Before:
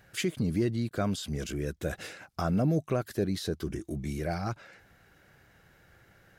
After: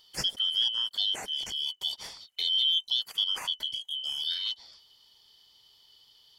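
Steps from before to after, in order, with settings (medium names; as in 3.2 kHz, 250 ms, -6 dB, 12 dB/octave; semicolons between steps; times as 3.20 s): four frequency bands reordered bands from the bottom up 3412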